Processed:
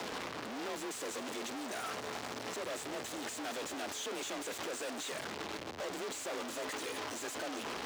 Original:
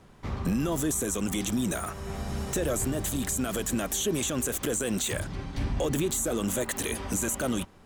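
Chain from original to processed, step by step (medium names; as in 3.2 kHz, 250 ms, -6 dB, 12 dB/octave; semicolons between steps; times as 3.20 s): one-bit comparator; frequency shift +41 Hz; three-band isolator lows -21 dB, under 270 Hz, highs -14 dB, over 7 kHz; trim -7.5 dB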